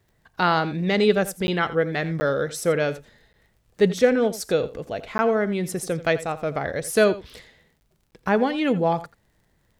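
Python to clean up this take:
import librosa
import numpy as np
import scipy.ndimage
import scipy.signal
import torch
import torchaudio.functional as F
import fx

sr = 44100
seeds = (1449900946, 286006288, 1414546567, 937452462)

y = fx.fix_declick_ar(x, sr, threshold=6.5)
y = fx.fix_interpolate(y, sr, at_s=(1.47, 2.2, 3.33, 5.18, 7.8, 8.11), length_ms=10.0)
y = fx.fix_echo_inverse(y, sr, delay_ms=85, level_db=-16.0)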